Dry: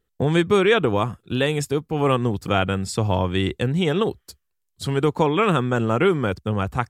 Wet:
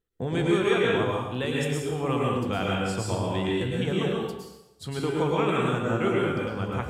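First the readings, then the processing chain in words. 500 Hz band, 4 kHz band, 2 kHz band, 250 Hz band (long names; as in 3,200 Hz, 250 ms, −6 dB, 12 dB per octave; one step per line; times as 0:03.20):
−5.0 dB, −5.0 dB, −4.5 dB, −4.5 dB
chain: tuned comb filter 63 Hz, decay 0.24 s, harmonics all, mix 60%
dense smooth reverb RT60 0.93 s, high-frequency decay 0.95×, pre-delay 95 ms, DRR −3.5 dB
level −6 dB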